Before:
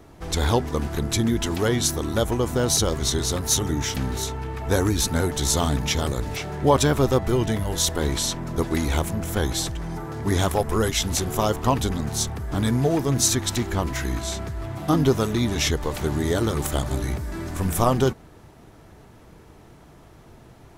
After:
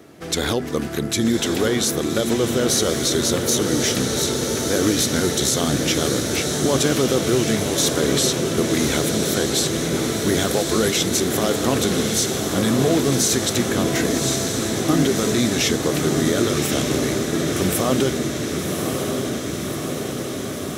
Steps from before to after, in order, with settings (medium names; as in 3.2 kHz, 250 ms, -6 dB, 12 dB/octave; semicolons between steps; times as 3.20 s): high-pass 180 Hz 12 dB/octave; peaking EQ 920 Hz -10.5 dB 0.55 oct; peak limiter -16 dBFS, peak gain reduction 9.5 dB; on a send: echo that smears into a reverb 1140 ms, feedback 74%, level -4.5 dB; on the sum: trim +6 dB